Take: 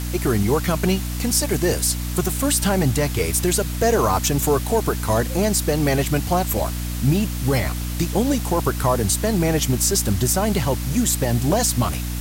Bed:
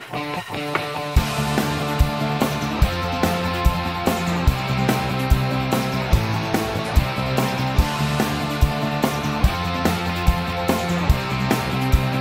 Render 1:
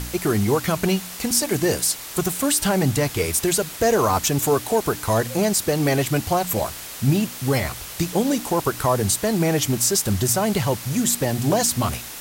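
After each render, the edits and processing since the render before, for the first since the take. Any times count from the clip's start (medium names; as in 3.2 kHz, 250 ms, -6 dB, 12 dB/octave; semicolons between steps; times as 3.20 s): de-hum 60 Hz, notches 5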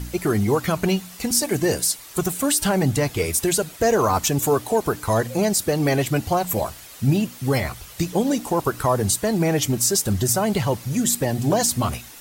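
noise reduction 9 dB, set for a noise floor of -36 dBFS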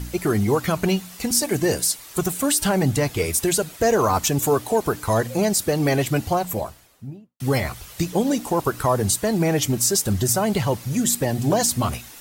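6.18–7.40 s: studio fade out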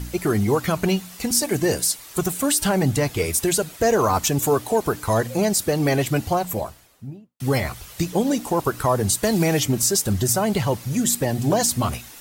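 9.23–9.83 s: three bands compressed up and down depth 70%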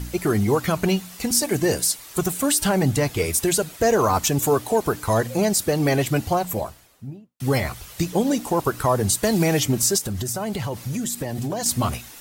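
9.98–11.66 s: compression, threshold -23 dBFS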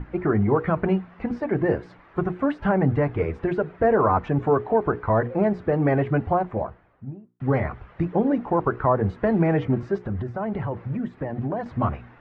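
low-pass 1.8 kHz 24 dB/octave; hum notches 60/120/180/240/300/360/420/480 Hz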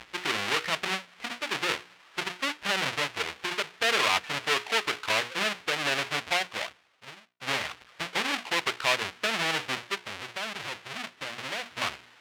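square wave that keeps the level; band-pass filter 2.7 kHz, Q 1.1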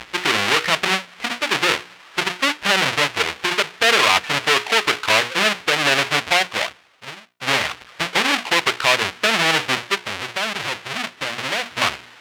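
trim +11 dB; peak limiter -2 dBFS, peak gain reduction 3 dB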